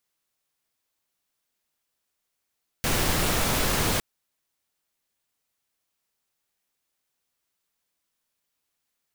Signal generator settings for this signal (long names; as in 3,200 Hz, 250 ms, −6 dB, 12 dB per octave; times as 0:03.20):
noise pink, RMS −24 dBFS 1.16 s